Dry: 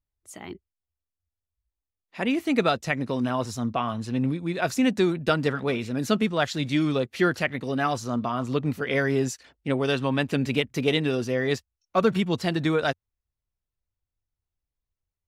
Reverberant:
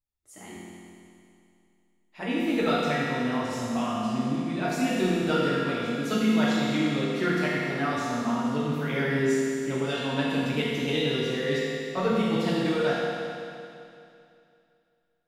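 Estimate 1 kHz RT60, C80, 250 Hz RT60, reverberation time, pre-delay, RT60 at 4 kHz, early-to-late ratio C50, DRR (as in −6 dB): 2.6 s, −2.0 dB, 2.6 s, 2.6 s, 4 ms, 2.6 s, −3.5 dB, −8.5 dB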